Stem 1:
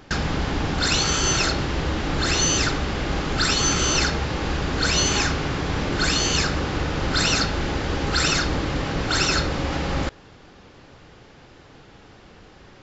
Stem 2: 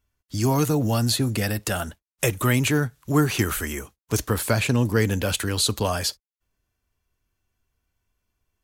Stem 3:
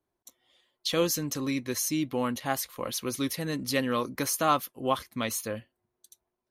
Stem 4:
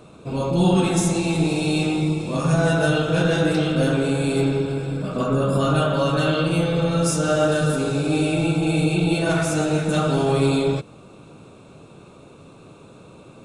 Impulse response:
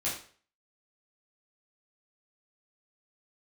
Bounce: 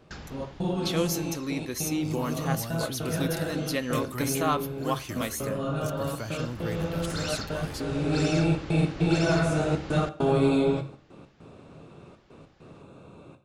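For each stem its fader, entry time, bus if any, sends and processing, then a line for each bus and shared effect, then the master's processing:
-14.5 dB, 0.00 s, no send, auto duck -15 dB, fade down 0.90 s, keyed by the third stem
-15.0 dB, 1.70 s, no send, none
-3.0 dB, 0.00 s, send -20.5 dB, none
7.68 s -13 dB -> 8.23 s -5.5 dB, 0.00 s, send -10 dB, treble shelf 3.8 kHz -11 dB; trance gate "x.x.xxxx" 100 bpm -60 dB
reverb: on, RT60 0.45 s, pre-delay 10 ms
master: none

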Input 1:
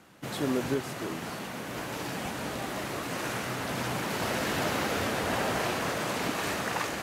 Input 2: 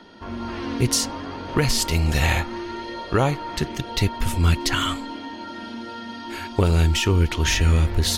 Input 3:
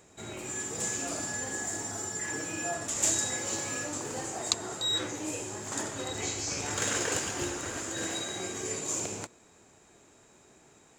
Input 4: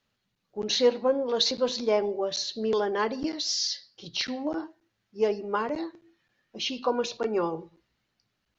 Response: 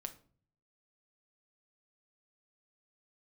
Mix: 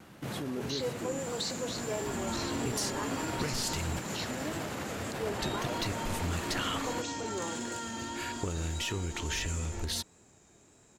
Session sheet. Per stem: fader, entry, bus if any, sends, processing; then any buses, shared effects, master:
+1.0 dB, 0.00 s, bus B, no send, bass shelf 200 Hz +6.5 dB; auto duck -7 dB, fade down 0.25 s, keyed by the fourth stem
-4.5 dB, 1.85 s, muted 3.99–5.39 s, bus A, no send, none
-5.0 dB, 0.60 s, bus B, no send, tone controls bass +6 dB, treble +4 dB; compression 2:1, threshold -42 dBFS, peak gain reduction 13 dB
-9.5 dB, 0.00 s, bus A, no send, none
bus A: 0.0 dB, transient shaper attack -3 dB, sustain +3 dB; compression 6:1, threshold -30 dBFS, peak gain reduction 11.5 dB
bus B: 0.0 dB, bass shelf 350 Hz +4 dB; peak limiter -27.5 dBFS, peak gain reduction 11 dB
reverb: none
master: bass shelf 200 Hz -3 dB; vibrato 1.6 Hz 33 cents

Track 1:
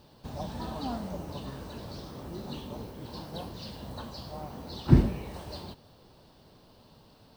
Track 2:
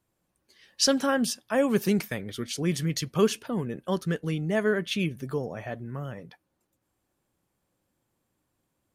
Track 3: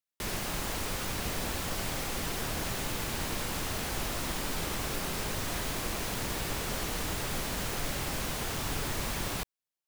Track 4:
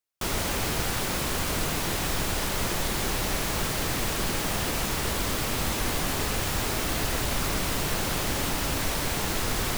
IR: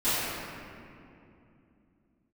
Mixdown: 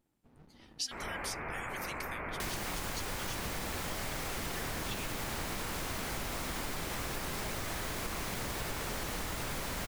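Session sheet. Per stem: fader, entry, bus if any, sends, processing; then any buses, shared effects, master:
-17.5 dB, 0.00 s, no send, low-pass 2.4 kHz; resonant low shelf 200 Hz -8 dB, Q 1.5; sliding maximum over 65 samples
-5.5 dB, 0.00 s, no send, steep high-pass 1.8 kHz
+1.5 dB, 2.20 s, no send, none
-4.0 dB, 0.70 s, no send, elliptic low-pass 2.3 kHz, stop band 40 dB; bass shelf 480 Hz -9.5 dB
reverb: none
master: compression, threshold -34 dBFS, peak gain reduction 10 dB

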